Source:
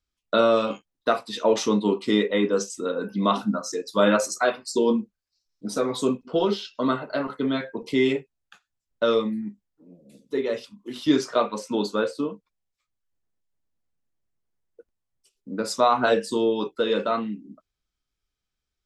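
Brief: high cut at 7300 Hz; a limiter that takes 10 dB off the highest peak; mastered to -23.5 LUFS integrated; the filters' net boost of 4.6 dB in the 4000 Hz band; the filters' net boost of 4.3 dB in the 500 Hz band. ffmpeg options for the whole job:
-af "lowpass=7.3k,equalizer=f=500:t=o:g=5,equalizer=f=4k:t=o:g=5.5,volume=2dB,alimiter=limit=-12dB:level=0:latency=1"

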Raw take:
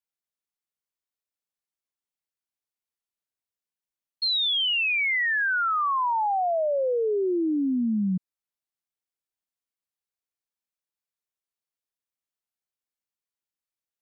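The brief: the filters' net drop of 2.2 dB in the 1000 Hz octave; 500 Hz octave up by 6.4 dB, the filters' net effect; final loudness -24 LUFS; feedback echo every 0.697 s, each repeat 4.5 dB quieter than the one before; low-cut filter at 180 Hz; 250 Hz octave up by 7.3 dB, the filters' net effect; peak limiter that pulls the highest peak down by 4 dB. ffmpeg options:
-af "highpass=180,equalizer=f=250:t=o:g=8.5,equalizer=f=500:t=o:g=7,equalizer=f=1k:t=o:g=-6,alimiter=limit=-16.5dB:level=0:latency=1,aecho=1:1:697|1394|2091|2788|3485|4182|4879|5576|6273:0.596|0.357|0.214|0.129|0.0772|0.0463|0.0278|0.0167|0.01,volume=-2dB"

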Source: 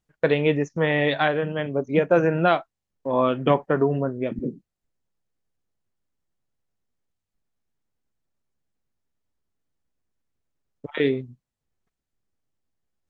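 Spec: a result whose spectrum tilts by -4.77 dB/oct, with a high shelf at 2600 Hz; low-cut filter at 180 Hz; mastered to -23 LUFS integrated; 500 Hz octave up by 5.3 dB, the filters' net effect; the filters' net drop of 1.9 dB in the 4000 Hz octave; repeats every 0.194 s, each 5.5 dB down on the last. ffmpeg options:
-af "highpass=180,equalizer=f=500:t=o:g=6,highshelf=f=2.6k:g=6,equalizer=f=4k:t=o:g=-7.5,aecho=1:1:194|388|582|776|970|1164|1358:0.531|0.281|0.149|0.079|0.0419|0.0222|0.0118,volume=-4.5dB"

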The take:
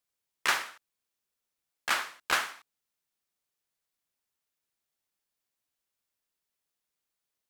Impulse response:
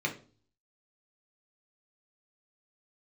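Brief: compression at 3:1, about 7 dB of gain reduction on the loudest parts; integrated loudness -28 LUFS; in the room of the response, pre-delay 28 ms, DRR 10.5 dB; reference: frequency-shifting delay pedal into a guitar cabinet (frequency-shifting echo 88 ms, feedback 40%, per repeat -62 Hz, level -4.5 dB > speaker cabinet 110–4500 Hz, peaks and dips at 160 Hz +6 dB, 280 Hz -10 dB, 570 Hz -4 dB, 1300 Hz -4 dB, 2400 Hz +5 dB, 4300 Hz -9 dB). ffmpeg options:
-filter_complex "[0:a]acompressor=threshold=-31dB:ratio=3,asplit=2[a][b];[1:a]atrim=start_sample=2205,adelay=28[c];[b][c]afir=irnorm=-1:irlink=0,volume=-17.5dB[d];[a][d]amix=inputs=2:normalize=0,asplit=6[e][f][g][h][i][j];[f]adelay=88,afreqshift=-62,volume=-4.5dB[k];[g]adelay=176,afreqshift=-124,volume=-12.5dB[l];[h]adelay=264,afreqshift=-186,volume=-20.4dB[m];[i]adelay=352,afreqshift=-248,volume=-28.4dB[n];[j]adelay=440,afreqshift=-310,volume=-36.3dB[o];[e][k][l][m][n][o]amix=inputs=6:normalize=0,highpass=110,equalizer=f=160:t=q:w=4:g=6,equalizer=f=280:t=q:w=4:g=-10,equalizer=f=570:t=q:w=4:g=-4,equalizer=f=1.3k:t=q:w=4:g=-4,equalizer=f=2.4k:t=q:w=4:g=5,equalizer=f=4.3k:t=q:w=4:g=-9,lowpass=f=4.5k:w=0.5412,lowpass=f=4.5k:w=1.3066,volume=7.5dB"

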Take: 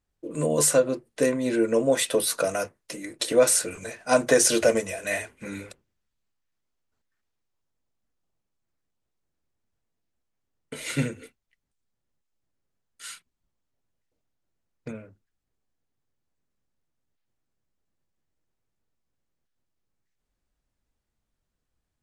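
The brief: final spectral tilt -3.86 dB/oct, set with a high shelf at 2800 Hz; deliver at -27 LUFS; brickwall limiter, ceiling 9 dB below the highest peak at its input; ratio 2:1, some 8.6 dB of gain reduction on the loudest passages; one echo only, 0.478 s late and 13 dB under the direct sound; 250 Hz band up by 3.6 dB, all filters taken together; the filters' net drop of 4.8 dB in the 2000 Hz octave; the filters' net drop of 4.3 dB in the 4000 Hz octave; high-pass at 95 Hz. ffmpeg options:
-af "highpass=95,equalizer=f=250:t=o:g=4.5,equalizer=f=2k:t=o:g=-6,highshelf=f=2.8k:g=3.5,equalizer=f=4k:t=o:g=-7.5,acompressor=threshold=-29dB:ratio=2,alimiter=limit=-22.5dB:level=0:latency=1,aecho=1:1:478:0.224,volume=6.5dB"

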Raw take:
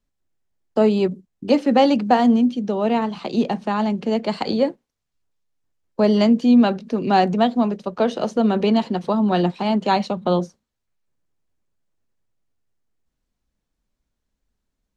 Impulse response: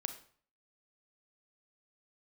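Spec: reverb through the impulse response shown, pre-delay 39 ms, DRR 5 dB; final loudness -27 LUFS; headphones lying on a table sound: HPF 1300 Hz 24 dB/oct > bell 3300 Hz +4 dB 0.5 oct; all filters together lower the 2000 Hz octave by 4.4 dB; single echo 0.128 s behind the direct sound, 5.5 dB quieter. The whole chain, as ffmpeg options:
-filter_complex "[0:a]equalizer=f=2k:t=o:g=-6,aecho=1:1:128:0.531,asplit=2[a][b];[1:a]atrim=start_sample=2205,adelay=39[c];[b][c]afir=irnorm=-1:irlink=0,volume=-4.5dB[d];[a][d]amix=inputs=2:normalize=0,highpass=f=1.3k:w=0.5412,highpass=f=1.3k:w=1.3066,equalizer=f=3.3k:t=o:w=0.5:g=4,volume=5.5dB"

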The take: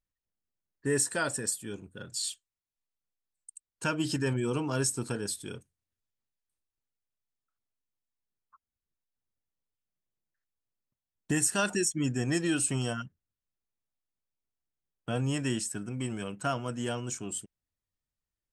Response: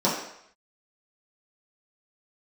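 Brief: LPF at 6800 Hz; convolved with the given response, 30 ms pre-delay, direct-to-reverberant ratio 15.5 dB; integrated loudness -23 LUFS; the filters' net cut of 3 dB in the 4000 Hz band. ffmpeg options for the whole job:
-filter_complex "[0:a]lowpass=6.8k,equalizer=f=4k:t=o:g=-3.5,asplit=2[a][b];[1:a]atrim=start_sample=2205,adelay=30[c];[b][c]afir=irnorm=-1:irlink=0,volume=-30.5dB[d];[a][d]amix=inputs=2:normalize=0,volume=9.5dB"

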